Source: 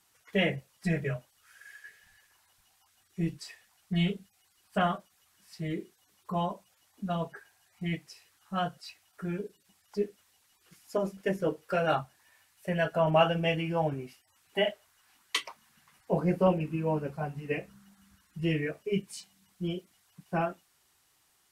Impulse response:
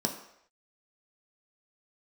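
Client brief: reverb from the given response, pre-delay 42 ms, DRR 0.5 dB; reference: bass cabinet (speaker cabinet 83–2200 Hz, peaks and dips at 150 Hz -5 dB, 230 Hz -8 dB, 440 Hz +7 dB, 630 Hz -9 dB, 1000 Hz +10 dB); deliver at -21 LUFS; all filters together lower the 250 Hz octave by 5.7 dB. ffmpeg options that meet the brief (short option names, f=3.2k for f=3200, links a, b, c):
-filter_complex "[0:a]equalizer=f=250:t=o:g=-6,asplit=2[a][b];[1:a]atrim=start_sample=2205,adelay=42[c];[b][c]afir=irnorm=-1:irlink=0,volume=-6.5dB[d];[a][d]amix=inputs=2:normalize=0,highpass=f=83:w=0.5412,highpass=f=83:w=1.3066,equalizer=f=150:t=q:w=4:g=-5,equalizer=f=230:t=q:w=4:g=-8,equalizer=f=440:t=q:w=4:g=7,equalizer=f=630:t=q:w=4:g=-9,equalizer=f=1k:t=q:w=4:g=10,lowpass=f=2.2k:w=0.5412,lowpass=f=2.2k:w=1.3066,volume=8dB"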